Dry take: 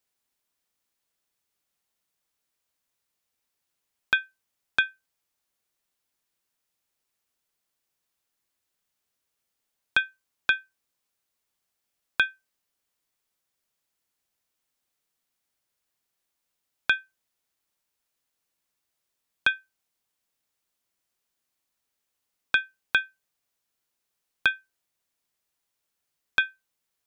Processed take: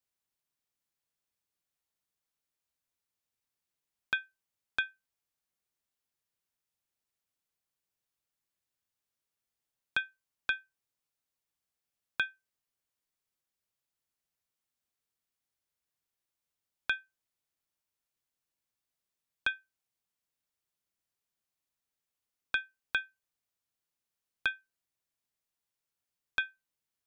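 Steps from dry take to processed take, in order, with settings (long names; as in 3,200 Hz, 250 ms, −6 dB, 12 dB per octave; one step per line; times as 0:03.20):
sub-octave generator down 1 octave, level −6 dB
level −8.5 dB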